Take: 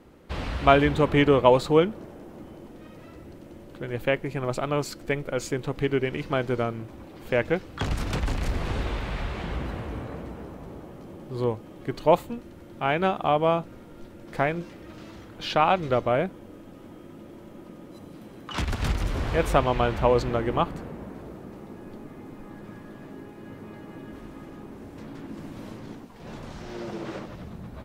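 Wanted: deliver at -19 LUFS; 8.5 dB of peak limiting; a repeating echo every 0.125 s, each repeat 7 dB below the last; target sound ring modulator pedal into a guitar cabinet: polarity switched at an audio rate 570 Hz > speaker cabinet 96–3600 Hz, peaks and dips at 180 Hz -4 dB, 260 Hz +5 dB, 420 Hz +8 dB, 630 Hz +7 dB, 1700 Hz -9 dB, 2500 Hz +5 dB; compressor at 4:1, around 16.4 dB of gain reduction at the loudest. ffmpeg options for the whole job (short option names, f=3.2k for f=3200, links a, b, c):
-af "acompressor=threshold=-33dB:ratio=4,alimiter=level_in=2.5dB:limit=-24dB:level=0:latency=1,volume=-2.5dB,aecho=1:1:125|250|375|500|625:0.447|0.201|0.0905|0.0407|0.0183,aeval=exprs='val(0)*sgn(sin(2*PI*570*n/s))':c=same,highpass=96,equalizer=f=180:t=q:w=4:g=-4,equalizer=f=260:t=q:w=4:g=5,equalizer=f=420:t=q:w=4:g=8,equalizer=f=630:t=q:w=4:g=7,equalizer=f=1.7k:t=q:w=4:g=-9,equalizer=f=2.5k:t=q:w=4:g=5,lowpass=f=3.6k:w=0.5412,lowpass=f=3.6k:w=1.3066,volume=16dB"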